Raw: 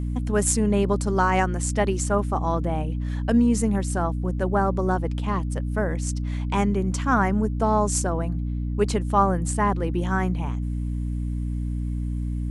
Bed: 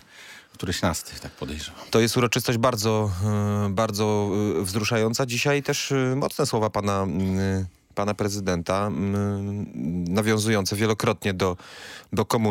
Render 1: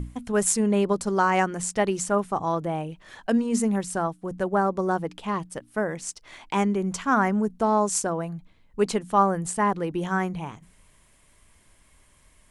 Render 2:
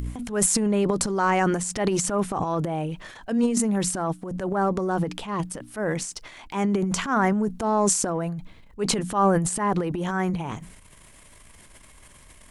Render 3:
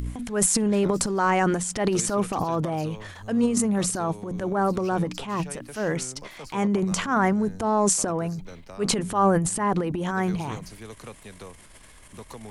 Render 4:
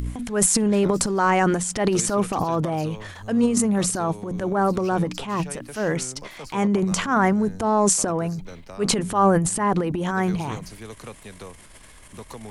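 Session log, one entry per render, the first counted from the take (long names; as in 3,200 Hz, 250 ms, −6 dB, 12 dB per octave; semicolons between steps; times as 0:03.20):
mains-hum notches 60/120/180/240/300 Hz
transient designer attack −7 dB, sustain +11 dB; upward compression, threshold −41 dBFS
mix in bed −19.5 dB
level +2.5 dB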